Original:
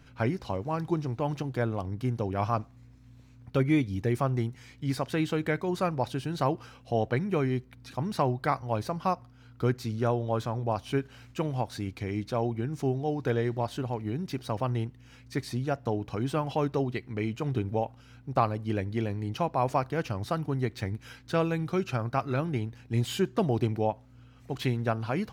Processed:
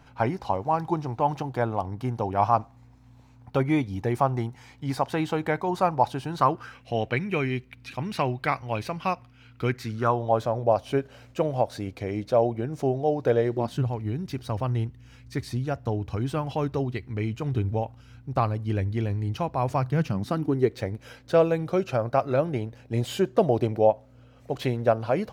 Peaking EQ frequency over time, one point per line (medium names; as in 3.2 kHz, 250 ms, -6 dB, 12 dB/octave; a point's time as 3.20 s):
peaking EQ +12.5 dB 0.8 oct
6.27 s 840 Hz
6.94 s 2.5 kHz
9.66 s 2.5 kHz
10.44 s 580 Hz
13.47 s 580 Hz
13.91 s 80 Hz
19.60 s 80 Hz
20.86 s 570 Hz